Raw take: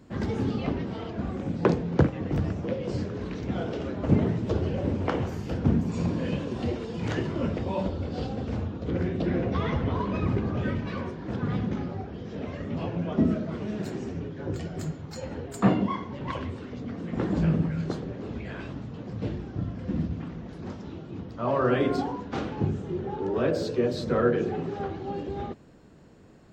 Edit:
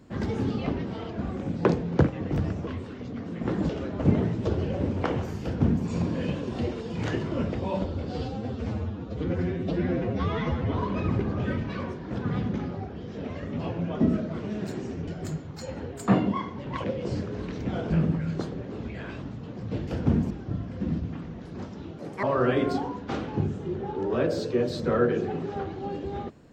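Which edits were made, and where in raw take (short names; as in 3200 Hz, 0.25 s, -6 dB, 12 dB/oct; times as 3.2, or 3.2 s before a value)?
2.67–3.73 swap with 16.39–17.41
5.46–5.89 copy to 19.38
8.16–9.89 stretch 1.5×
14.25–14.62 cut
21.06–21.47 speed 166%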